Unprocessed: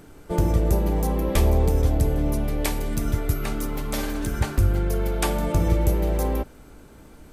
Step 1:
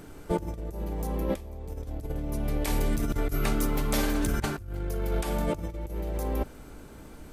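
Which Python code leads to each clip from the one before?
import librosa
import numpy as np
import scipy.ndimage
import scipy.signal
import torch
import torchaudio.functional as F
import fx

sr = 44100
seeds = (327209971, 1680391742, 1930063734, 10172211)

y = fx.over_compress(x, sr, threshold_db=-25.0, ratio=-0.5)
y = y * librosa.db_to_amplitude(-3.0)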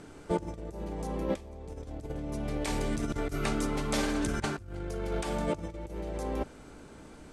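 y = scipy.signal.sosfilt(scipy.signal.butter(4, 9100.0, 'lowpass', fs=sr, output='sos'), x)
y = fx.low_shelf(y, sr, hz=76.0, db=-9.5)
y = y * librosa.db_to_amplitude(-1.0)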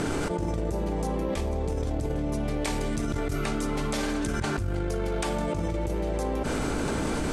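y = fx.env_flatten(x, sr, amount_pct=100)
y = y * librosa.db_to_amplitude(-2.5)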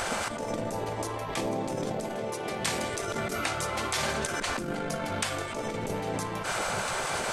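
y = fx.spec_gate(x, sr, threshold_db=-10, keep='weak')
y = y * librosa.db_to_amplitude(4.5)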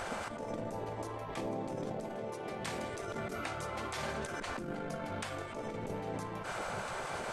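y = fx.high_shelf(x, sr, hz=2700.0, db=-9.0)
y = y * librosa.db_to_amplitude(-6.5)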